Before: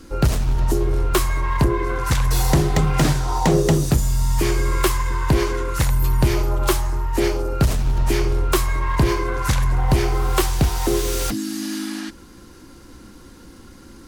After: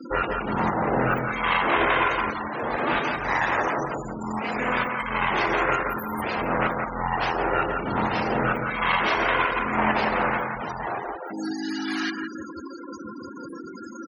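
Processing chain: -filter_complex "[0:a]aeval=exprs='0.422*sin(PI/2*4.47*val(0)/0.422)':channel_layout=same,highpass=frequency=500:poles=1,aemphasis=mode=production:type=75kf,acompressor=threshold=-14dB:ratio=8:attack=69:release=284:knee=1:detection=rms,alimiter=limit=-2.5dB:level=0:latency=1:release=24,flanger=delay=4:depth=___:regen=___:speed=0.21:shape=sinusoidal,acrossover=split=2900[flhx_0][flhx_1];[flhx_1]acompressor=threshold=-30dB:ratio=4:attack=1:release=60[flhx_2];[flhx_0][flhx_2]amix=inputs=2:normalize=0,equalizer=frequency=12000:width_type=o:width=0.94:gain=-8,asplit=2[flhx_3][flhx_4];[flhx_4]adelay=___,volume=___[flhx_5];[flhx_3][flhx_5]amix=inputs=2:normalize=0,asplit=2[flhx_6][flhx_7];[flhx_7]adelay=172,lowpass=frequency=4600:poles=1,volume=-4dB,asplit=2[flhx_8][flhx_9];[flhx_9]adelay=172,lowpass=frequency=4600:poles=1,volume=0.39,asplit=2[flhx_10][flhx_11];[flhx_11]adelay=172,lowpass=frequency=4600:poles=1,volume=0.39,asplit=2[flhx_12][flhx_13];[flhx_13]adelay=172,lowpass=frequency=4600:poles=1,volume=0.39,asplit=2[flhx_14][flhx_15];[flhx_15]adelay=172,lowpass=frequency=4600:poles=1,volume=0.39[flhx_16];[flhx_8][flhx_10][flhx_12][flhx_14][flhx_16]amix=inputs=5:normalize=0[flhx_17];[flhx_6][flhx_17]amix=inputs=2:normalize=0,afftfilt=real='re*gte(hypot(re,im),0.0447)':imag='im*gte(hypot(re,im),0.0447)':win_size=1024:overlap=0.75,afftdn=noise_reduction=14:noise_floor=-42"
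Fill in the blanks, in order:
9.3, 72, 24, -14dB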